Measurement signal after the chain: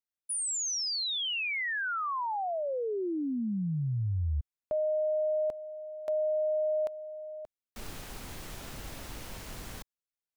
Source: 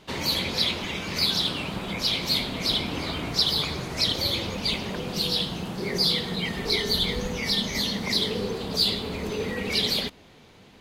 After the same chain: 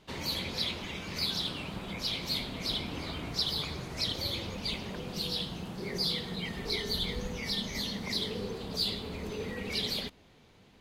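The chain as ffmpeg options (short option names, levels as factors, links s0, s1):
-af "lowshelf=f=110:g=5,volume=0.376"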